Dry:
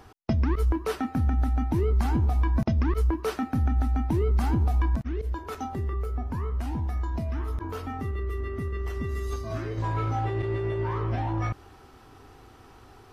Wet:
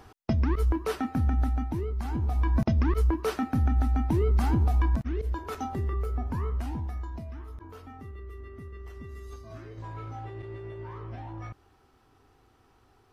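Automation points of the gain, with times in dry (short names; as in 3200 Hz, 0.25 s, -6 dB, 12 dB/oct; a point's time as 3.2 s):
1.45 s -1 dB
1.95 s -9 dB
2.54 s 0 dB
6.48 s 0 dB
7.47 s -11.5 dB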